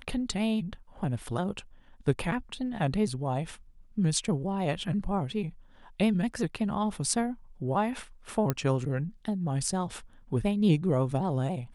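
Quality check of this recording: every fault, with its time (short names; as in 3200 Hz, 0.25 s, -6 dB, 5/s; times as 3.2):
8.5 pop -13 dBFS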